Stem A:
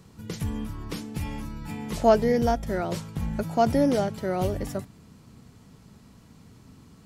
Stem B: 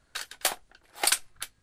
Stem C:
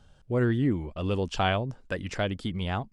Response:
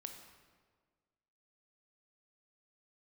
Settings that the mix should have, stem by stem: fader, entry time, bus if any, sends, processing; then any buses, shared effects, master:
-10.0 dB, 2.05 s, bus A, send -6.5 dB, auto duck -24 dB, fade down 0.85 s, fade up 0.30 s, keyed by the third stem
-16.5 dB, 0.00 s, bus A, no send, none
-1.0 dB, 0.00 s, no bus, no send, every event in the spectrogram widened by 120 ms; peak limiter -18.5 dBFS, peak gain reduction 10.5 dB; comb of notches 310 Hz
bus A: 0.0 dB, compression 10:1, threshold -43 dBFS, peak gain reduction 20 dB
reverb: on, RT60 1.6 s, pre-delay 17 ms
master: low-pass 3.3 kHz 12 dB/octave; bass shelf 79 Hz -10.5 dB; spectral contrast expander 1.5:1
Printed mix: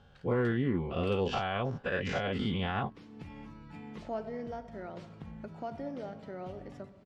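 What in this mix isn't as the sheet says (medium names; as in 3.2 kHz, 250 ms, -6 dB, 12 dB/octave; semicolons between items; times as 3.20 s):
stem B -16.5 dB -> -25.5 dB; master: missing spectral contrast expander 1.5:1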